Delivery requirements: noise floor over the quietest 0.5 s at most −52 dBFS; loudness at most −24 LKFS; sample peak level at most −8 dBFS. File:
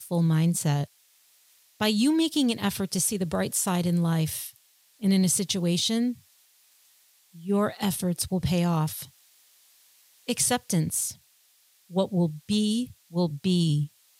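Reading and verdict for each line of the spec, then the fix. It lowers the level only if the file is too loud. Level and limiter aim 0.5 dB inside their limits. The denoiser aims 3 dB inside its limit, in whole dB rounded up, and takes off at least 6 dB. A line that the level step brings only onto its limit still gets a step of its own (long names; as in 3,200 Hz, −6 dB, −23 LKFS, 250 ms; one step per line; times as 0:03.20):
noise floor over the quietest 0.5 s −63 dBFS: in spec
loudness −26.0 LKFS: in spec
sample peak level −12.0 dBFS: in spec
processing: no processing needed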